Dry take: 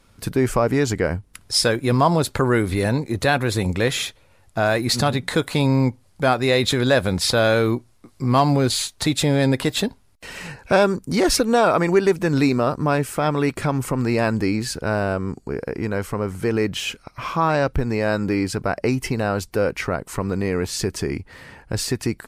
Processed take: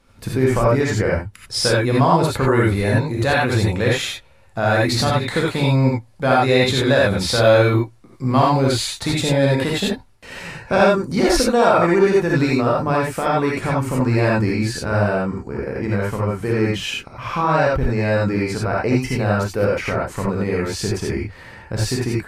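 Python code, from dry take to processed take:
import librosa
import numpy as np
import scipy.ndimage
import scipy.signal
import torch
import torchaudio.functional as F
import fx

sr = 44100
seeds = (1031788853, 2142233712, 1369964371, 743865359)

y = fx.high_shelf(x, sr, hz=5700.0, db=-6.5)
y = fx.rev_gated(y, sr, seeds[0], gate_ms=110, shape='rising', drr_db=-4.0)
y = F.gain(torch.from_numpy(y), -2.0).numpy()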